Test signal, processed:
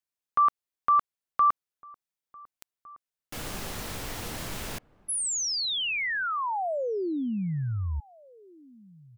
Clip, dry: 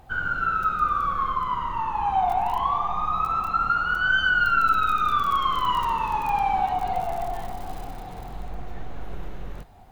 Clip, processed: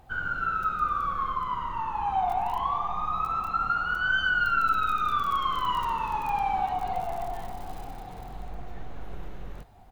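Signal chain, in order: echo from a far wall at 250 m, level -23 dB; trim -4 dB

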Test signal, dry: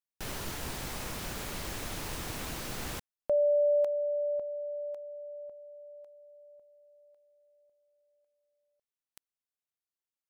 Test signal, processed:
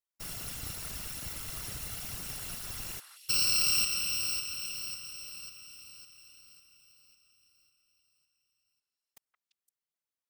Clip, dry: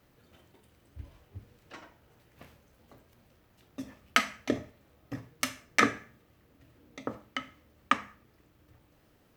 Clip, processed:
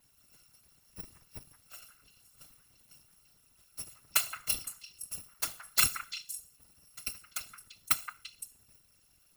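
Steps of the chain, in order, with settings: bit-reversed sample order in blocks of 256 samples; repeats whose band climbs or falls 171 ms, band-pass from 1.4 kHz, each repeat 1.4 oct, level -5 dB; whisper effect; trim -2 dB

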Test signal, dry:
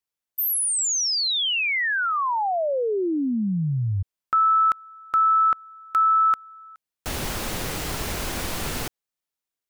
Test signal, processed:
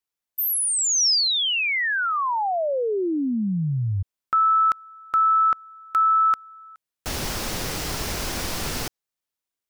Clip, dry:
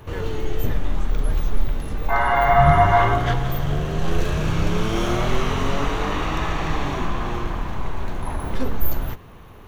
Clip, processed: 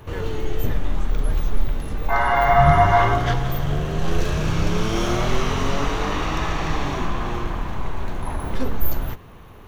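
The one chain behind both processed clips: dynamic bell 5.3 kHz, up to +5 dB, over -46 dBFS, Q 2.2

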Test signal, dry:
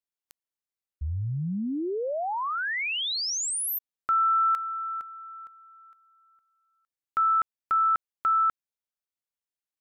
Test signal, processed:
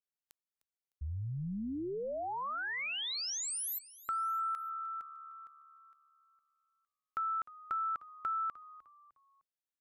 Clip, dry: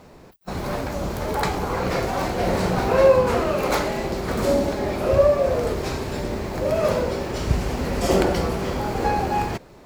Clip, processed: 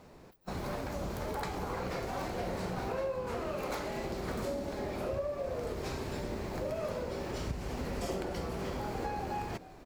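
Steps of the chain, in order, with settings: compression 6:1, threshold -25 dBFS; frequency-shifting echo 304 ms, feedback 37%, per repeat -73 Hz, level -18.5 dB; trim -8 dB

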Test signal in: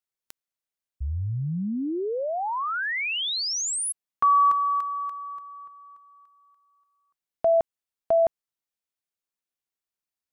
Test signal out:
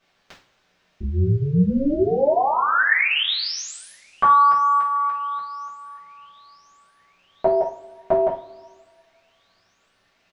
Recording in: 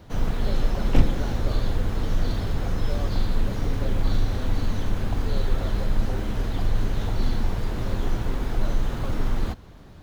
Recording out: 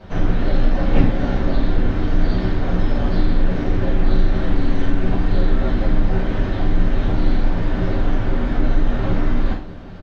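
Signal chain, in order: dynamic bell 1.9 kHz, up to +3 dB, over -53 dBFS, Q 4.7; in parallel at +3 dB: compression 12:1, threshold -28 dBFS; on the sum: word length cut 10-bit, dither triangular; AM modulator 280 Hz, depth 45%; distance through air 190 m; doubling 46 ms -11 dB; on a send: feedback echo behind a high-pass 1020 ms, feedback 67%, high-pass 3.9 kHz, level -24 dB; on the sum: two-slope reverb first 0.31 s, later 1.7 s, from -22 dB, DRR -8 dB; trim -2.5 dB

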